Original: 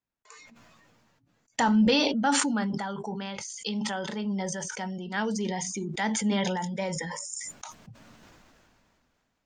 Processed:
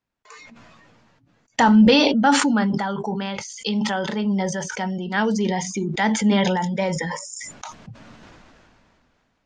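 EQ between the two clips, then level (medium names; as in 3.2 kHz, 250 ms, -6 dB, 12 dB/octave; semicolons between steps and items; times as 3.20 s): distance through air 85 m; +8.5 dB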